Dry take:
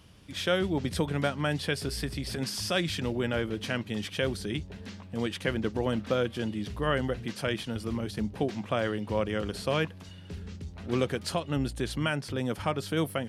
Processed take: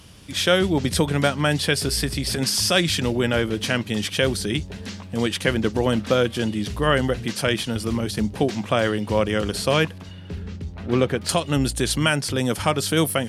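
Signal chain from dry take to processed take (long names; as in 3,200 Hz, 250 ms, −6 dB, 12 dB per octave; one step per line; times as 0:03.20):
parametric band 9,100 Hz +6.5 dB 2.1 octaves, from 0:09.98 −6.5 dB, from 0:11.29 +10.5 dB
level +8 dB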